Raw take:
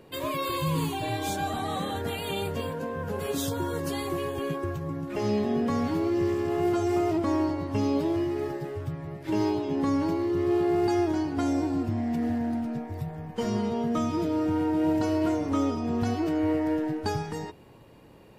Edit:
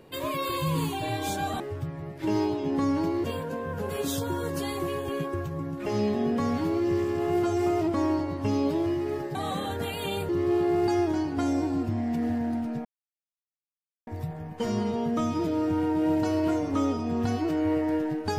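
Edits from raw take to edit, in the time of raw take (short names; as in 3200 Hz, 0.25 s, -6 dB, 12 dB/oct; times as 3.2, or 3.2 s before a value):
1.6–2.54 swap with 8.65–10.29
12.85 insert silence 1.22 s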